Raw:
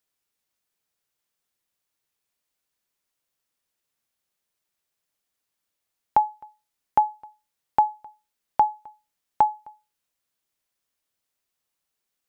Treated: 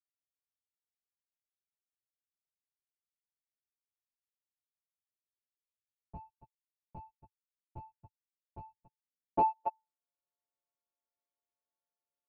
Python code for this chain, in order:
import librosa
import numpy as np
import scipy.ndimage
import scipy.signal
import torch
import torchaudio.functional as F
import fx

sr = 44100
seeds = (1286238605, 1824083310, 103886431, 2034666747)

y = fx.freq_snap(x, sr, grid_st=4)
y = fx.lowpass(y, sr, hz=1300.0, slope=6)
y = fx.env_lowpass_down(y, sr, base_hz=760.0, full_db=-20.0)
y = fx.low_shelf(y, sr, hz=390.0, db=-7.0)
y = fx.leveller(y, sr, passes=1, at=(6.17, 8.78))
y = fx.transient(y, sr, attack_db=3, sustain_db=-4)
y = fx.leveller(y, sr, passes=5)
y = fx.filter_sweep_lowpass(y, sr, from_hz=100.0, to_hz=760.0, start_s=8.75, end_s=9.77, q=1.9)